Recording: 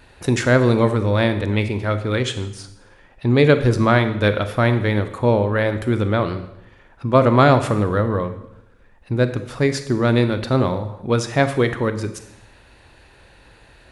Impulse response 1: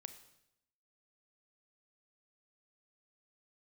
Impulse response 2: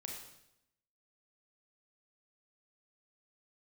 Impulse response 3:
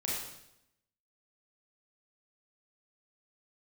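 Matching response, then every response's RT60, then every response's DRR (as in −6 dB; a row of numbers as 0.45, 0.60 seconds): 1; 0.80, 0.80, 0.80 seconds; 9.5, −0.5, −6.0 decibels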